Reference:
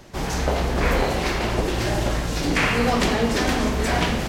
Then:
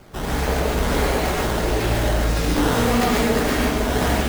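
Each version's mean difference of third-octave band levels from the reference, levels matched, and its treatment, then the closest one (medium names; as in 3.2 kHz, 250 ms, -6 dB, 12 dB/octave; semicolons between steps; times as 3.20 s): 3.5 dB: in parallel at +0.5 dB: peak limiter -17 dBFS, peak gain reduction 9 dB; on the sum: decimation with a swept rate 11×, swing 160% 1.6 Hz; gated-style reverb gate 170 ms rising, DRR -2.5 dB; trim -7 dB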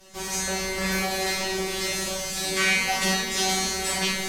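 8.5 dB: peaking EQ 10 kHz +14.5 dB 3 oct; feedback comb 190 Hz, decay 0.65 s, harmonics all, mix 100%; flutter echo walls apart 8.2 m, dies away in 0.38 s; trim +8 dB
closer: first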